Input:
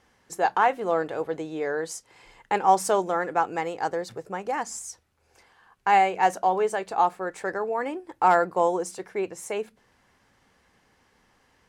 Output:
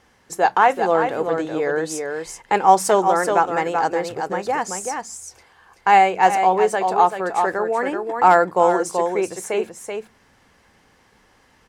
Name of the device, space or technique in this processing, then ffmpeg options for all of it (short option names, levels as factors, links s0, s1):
ducked delay: -filter_complex "[0:a]asplit=3[s0][s1][s2];[s1]adelay=382,volume=0.562[s3];[s2]apad=whole_len=532316[s4];[s3][s4]sidechaincompress=threshold=0.0562:ratio=8:attack=28:release=205[s5];[s0][s5]amix=inputs=2:normalize=0,volume=2"